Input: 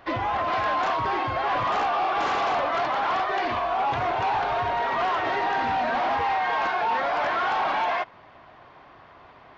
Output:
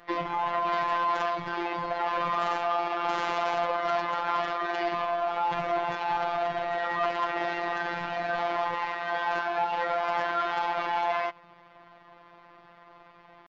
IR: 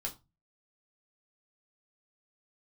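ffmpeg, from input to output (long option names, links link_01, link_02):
-af "atempo=0.71,afftfilt=real='hypot(re,im)*cos(PI*b)':imag='0':win_size=1024:overlap=0.75"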